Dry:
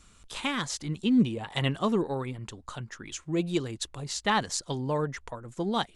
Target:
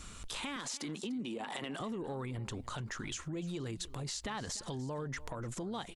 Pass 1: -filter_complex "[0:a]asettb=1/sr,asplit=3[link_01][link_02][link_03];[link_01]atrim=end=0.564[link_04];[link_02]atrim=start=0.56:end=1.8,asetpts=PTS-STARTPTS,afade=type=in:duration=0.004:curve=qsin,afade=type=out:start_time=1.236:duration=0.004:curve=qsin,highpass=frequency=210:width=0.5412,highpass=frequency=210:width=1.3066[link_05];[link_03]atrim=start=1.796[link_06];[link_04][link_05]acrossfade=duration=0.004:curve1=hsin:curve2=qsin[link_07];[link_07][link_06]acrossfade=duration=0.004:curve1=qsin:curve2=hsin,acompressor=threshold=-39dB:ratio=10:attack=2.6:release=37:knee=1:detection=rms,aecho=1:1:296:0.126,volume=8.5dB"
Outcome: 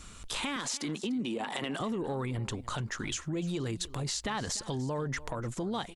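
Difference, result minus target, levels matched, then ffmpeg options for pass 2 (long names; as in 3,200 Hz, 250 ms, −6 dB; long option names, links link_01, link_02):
downward compressor: peak gain reduction −6 dB
-filter_complex "[0:a]asettb=1/sr,asplit=3[link_01][link_02][link_03];[link_01]atrim=end=0.564[link_04];[link_02]atrim=start=0.56:end=1.8,asetpts=PTS-STARTPTS,afade=type=in:duration=0.004:curve=qsin,afade=type=out:start_time=1.236:duration=0.004:curve=qsin,highpass=frequency=210:width=0.5412,highpass=frequency=210:width=1.3066[link_05];[link_03]atrim=start=1.796[link_06];[link_04][link_05]acrossfade=duration=0.004:curve1=hsin:curve2=qsin[link_07];[link_07][link_06]acrossfade=duration=0.004:curve1=qsin:curve2=hsin,acompressor=threshold=-45.5dB:ratio=10:attack=2.6:release=37:knee=1:detection=rms,aecho=1:1:296:0.126,volume=8.5dB"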